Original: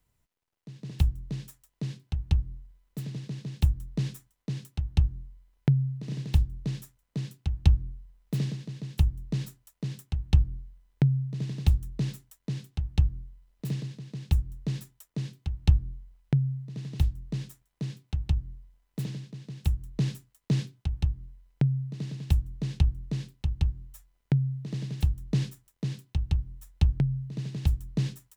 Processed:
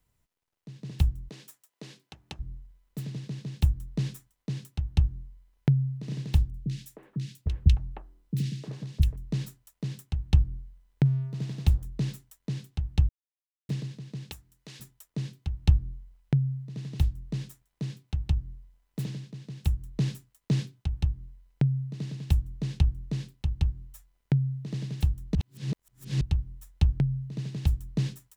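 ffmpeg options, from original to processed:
ffmpeg -i in.wav -filter_complex "[0:a]asplit=3[link_01][link_02][link_03];[link_01]afade=type=out:start_time=1.28:duration=0.02[link_04];[link_02]highpass=350,afade=type=in:start_time=1.28:duration=0.02,afade=type=out:start_time=2.39:duration=0.02[link_05];[link_03]afade=type=in:start_time=2.39:duration=0.02[link_06];[link_04][link_05][link_06]amix=inputs=3:normalize=0,asettb=1/sr,asplit=3[link_07][link_08][link_09];[link_07]atrim=end=6.504[link_10];[link_08]atrim=start=6.5:end=9.16,asetpts=PTS-STARTPTS,afade=type=in:duration=0.004:curve=qsin,afade=type=out:start_time=2.656:duration=0.004:curve=qsin,acrossover=split=370|1700[link_11][link_12][link_13];[link_13]adelay=40[link_14];[link_12]adelay=310[link_15];[link_11][link_15][link_14]amix=inputs=3:normalize=0,atrim=end_sample=117306[link_16];[link_09]atrim=start=9.156[link_17];[link_10][link_16]acrossfade=duration=0.004:curve1=hsin:curve2=qsin[link_18];[link_18][link_17]acrossfade=duration=0.004:curve1=qsin:curve2=hsin,asettb=1/sr,asplit=3[link_19][link_20][link_21];[link_19]atrim=end=11.054[link_22];[link_20]atrim=start=11.05:end=11.86,asetpts=PTS-STARTPTS,afade=type=in:duration=0.004:curve=qsin,afade=type=out:start_time=0.806:duration=0.004:curve=qsin,aeval=exprs='sgn(val(0))*max(abs(val(0))-0.00299,0)':channel_layout=same[link_23];[link_21]atrim=start=11.856[link_24];[link_22][link_23]acrossfade=duration=0.004:curve1=hsin:curve2=qsin[link_25];[link_25][link_24]acrossfade=duration=0.004:curve1=qsin:curve2=hsin,asettb=1/sr,asplit=3[link_26][link_27][link_28];[link_26]atrim=end=14.314[link_29];[link_27]atrim=start=14.31:end=14.8,asetpts=PTS-STARTPTS,afade=type=in:duration=0.004:curve=qsin,afade=type=out:start_time=0.486:duration=0.004:curve=qsin,highpass=frequency=1400:poles=1[link_30];[link_28]atrim=start=14.796[link_31];[link_29][link_30]acrossfade=duration=0.004:curve1=hsin:curve2=qsin[link_32];[link_32][link_31]acrossfade=duration=0.004:curve1=qsin:curve2=hsin,asplit=5[link_33][link_34][link_35][link_36][link_37];[link_33]atrim=end=13.09,asetpts=PTS-STARTPTS,afade=type=out:start_time=13.086:duration=0.004:curve=hsin[link_38];[link_34]atrim=start=13.09:end=13.69,asetpts=PTS-STARTPTS,volume=0[link_39];[link_35]atrim=start=13.69:end=25.352,asetpts=PTS-STARTPTS,afade=type=in:duration=0.004:curve=hsin[link_40];[link_36]atrim=start=25.348:end=26.212,asetpts=PTS-STARTPTS,areverse[link_41];[link_37]atrim=start=26.208[link_42];[link_38][link_39][link_40]concat=n=3:v=0:a=1[link_43];[link_43][link_41]acrossfade=duration=0.004:curve1=hsin:curve2=hsin[link_44];[link_44][link_42]acrossfade=duration=0.004:curve1=hsin:curve2=hsin" out.wav

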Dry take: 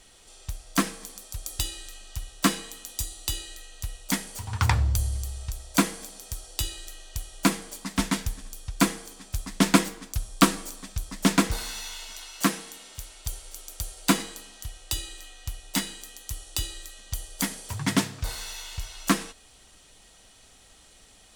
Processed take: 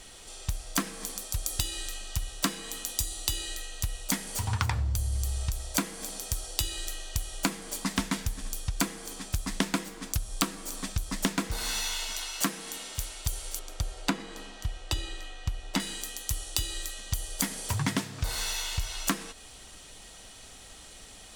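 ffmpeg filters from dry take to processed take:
ffmpeg -i in.wav -filter_complex "[0:a]asettb=1/sr,asplit=3[link_01][link_02][link_03];[link_01]atrim=end=13.594[link_04];[link_02]atrim=start=13.59:end=15.8,asetpts=PTS-STARTPTS,afade=type=in:duration=0.004:curve=qsin,afade=type=out:start_time=2.206:duration=0.004:curve=qsin,aemphasis=mode=reproduction:type=75fm[link_05];[link_03]atrim=start=15.796[link_06];[link_04][link_05]acrossfade=duration=0.004:curve1=hsin:curve2=qsin[link_07];[link_07][link_06]acrossfade=duration=0.004:curve1=qsin:curve2=hsin,acompressor=threshold=-31dB:ratio=12,volume=6dB" out.wav

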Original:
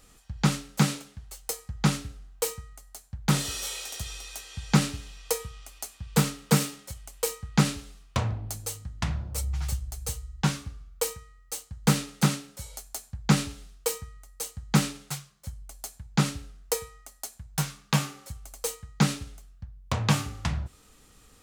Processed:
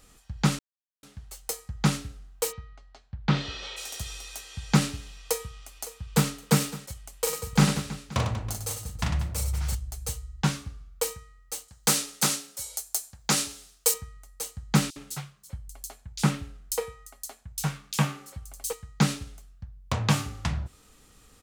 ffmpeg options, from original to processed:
ffmpeg -i in.wav -filter_complex "[0:a]asplit=3[link_01][link_02][link_03];[link_01]afade=type=out:start_time=2.51:duration=0.02[link_04];[link_02]lowpass=frequency=4200:width=0.5412,lowpass=frequency=4200:width=1.3066,afade=type=in:start_time=2.51:duration=0.02,afade=type=out:start_time=3.76:duration=0.02[link_05];[link_03]afade=type=in:start_time=3.76:duration=0.02[link_06];[link_04][link_05][link_06]amix=inputs=3:normalize=0,asplit=2[link_07][link_08];[link_08]afade=type=in:start_time=5.19:duration=0.01,afade=type=out:start_time=6.3:duration=0.01,aecho=0:1:560|1120:0.149624|0.0224435[link_09];[link_07][link_09]amix=inputs=2:normalize=0,asettb=1/sr,asplit=3[link_10][link_11][link_12];[link_10]atrim=end=7.194[link_13];[link_11]atrim=start=7.19:end=9.75,asetpts=PTS-STARTPTS,afade=type=in:duration=0.004:curve=qsin,afade=type=out:start_time=2.556:duration=0.004:curve=qsin,aecho=1:1:40|100|190|325|527.5:0.631|0.398|0.251|0.158|0.1,atrim=end_sample=112896[link_14];[link_12]atrim=start=9.746[link_15];[link_13][link_14]acrossfade=duration=0.004:curve1=hsin:curve2=qsin[link_16];[link_16][link_15]acrossfade=duration=0.004:curve1=qsin:curve2=hsin,asettb=1/sr,asplit=3[link_17][link_18][link_19];[link_17]atrim=end=11.684[link_20];[link_18]atrim=start=11.68:end=13.94,asetpts=PTS-STARTPTS,afade=type=in:duration=0.004:curve=qsin,afade=type=out:start_time=2.256:duration=0.004:curve=qsin,bass=frequency=250:gain=-13,treble=frequency=4000:gain=9[link_21];[link_19]atrim=start=13.936[link_22];[link_20][link_21]acrossfade=duration=0.004:curve1=hsin:curve2=qsin[link_23];[link_23][link_22]acrossfade=duration=0.004:curve1=qsin:curve2=hsin,asettb=1/sr,asplit=3[link_24][link_25][link_26];[link_24]atrim=end=14.904[link_27];[link_25]atrim=start=14.9:end=18.73,asetpts=PTS-STARTPTS,afade=type=in:duration=0.004:curve=qsin,afade=type=out:start_time=3.826:duration=0.004:curve=qsin,acrossover=split=3800[link_28][link_29];[link_28]adelay=60[link_30];[link_30][link_29]amix=inputs=2:normalize=0,atrim=end_sample=168903[link_31];[link_26]atrim=start=18.726[link_32];[link_27][link_31]acrossfade=duration=0.004:curve1=hsin:curve2=qsin[link_33];[link_33][link_32]acrossfade=duration=0.004:curve1=qsin:curve2=hsin,asplit=3[link_34][link_35][link_36];[link_34]atrim=end=0.59,asetpts=PTS-STARTPTS,afade=type=out:start_time=0.586:duration=0.004:curve=hsin[link_37];[link_35]atrim=start=0.59:end=1.03,asetpts=PTS-STARTPTS,volume=0[link_38];[link_36]atrim=start=1.03,asetpts=PTS-STARTPTS,afade=type=in:duration=0.004:curve=hsin[link_39];[link_37][link_38][link_39]concat=n=3:v=0:a=1" out.wav

